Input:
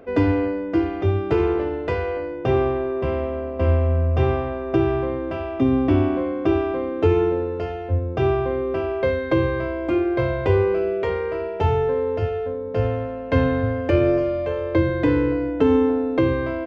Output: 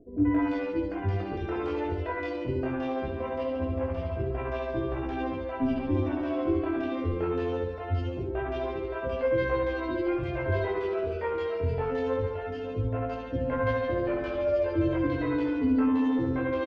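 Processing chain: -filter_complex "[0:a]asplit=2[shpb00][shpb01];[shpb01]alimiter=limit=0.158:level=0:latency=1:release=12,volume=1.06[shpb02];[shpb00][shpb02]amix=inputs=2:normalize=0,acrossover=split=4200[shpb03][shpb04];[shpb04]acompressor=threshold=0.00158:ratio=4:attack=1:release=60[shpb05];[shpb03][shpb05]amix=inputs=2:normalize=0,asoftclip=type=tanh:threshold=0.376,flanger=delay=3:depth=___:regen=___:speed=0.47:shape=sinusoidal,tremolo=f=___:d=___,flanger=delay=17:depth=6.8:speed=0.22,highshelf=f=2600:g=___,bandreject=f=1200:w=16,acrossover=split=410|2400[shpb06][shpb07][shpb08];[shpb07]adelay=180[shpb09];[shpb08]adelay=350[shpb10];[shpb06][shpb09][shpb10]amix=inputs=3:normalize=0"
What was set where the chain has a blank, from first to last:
1, 38, 14, 0.57, 5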